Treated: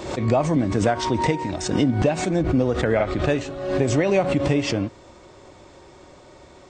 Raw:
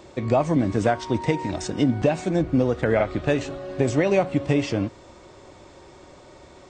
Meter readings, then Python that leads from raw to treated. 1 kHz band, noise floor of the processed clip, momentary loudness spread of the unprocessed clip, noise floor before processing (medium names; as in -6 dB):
+2.0 dB, -48 dBFS, 6 LU, -48 dBFS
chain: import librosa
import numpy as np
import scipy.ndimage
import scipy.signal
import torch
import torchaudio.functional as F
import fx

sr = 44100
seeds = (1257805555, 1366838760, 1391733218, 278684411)

y = fx.pre_swell(x, sr, db_per_s=61.0)